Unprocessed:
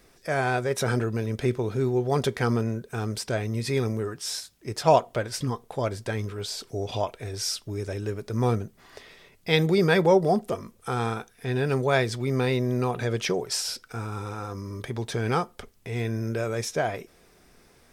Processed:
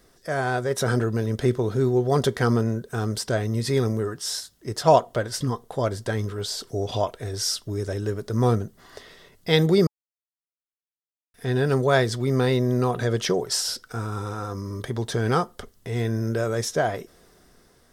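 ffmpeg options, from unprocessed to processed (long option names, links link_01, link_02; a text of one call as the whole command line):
ffmpeg -i in.wav -filter_complex "[0:a]asplit=3[link_01][link_02][link_03];[link_01]atrim=end=9.87,asetpts=PTS-STARTPTS,afade=type=out:start_time=9.866:duration=0.004:curve=hsin[link_04];[link_02]atrim=start=9.87:end=11.34,asetpts=PTS-STARTPTS,volume=0[link_05];[link_03]atrim=start=11.34,asetpts=PTS-STARTPTS,afade=type=in:duration=0.004:curve=hsin[link_06];[link_04][link_05][link_06]concat=n=3:v=0:a=1,equalizer=frequency=2400:width_type=o:width=0.25:gain=-11.5,bandreject=frequency=850:width=17,dynaudnorm=framelen=170:gausssize=9:maxgain=3.5dB" out.wav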